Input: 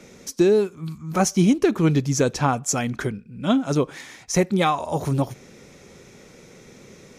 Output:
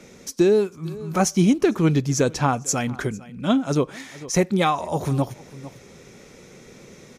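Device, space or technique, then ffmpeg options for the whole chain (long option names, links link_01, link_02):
ducked delay: -filter_complex "[0:a]asplit=3[link_01][link_02][link_03];[link_02]adelay=450,volume=-6dB[link_04];[link_03]apad=whole_len=336753[link_05];[link_04][link_05]sidechaincompress=threshold=-36dB:ratio=16:attack=8.4:release=617[link_06];[link_01][link_06]amix=inputs=2:normalize=0"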